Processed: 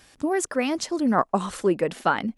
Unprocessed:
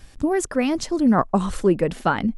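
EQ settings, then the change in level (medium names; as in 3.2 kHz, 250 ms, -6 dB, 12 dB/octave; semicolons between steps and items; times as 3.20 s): high-pass 390 Hz 6 dB/octave; 0.0 dB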